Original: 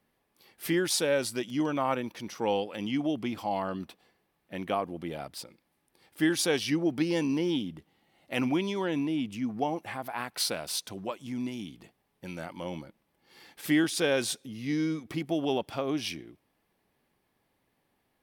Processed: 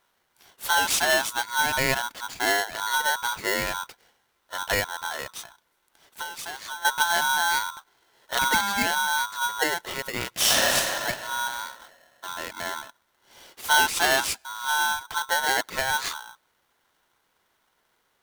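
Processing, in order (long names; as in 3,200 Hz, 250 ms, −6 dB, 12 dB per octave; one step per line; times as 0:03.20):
0:05.34–0:06.85: downward compressor 16 to 1, threshold −37 dBFS, peak gain reduction 17 dB
0:08.42–0:08.91: parametric band 960 Hz +7.5 dB 0.37 octaves
0:10.30–0:10.75: thrown reverb, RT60 2.3 s, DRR −8 dB
ring modulator with a square carrier 1,200 Hz
level +4.5 dB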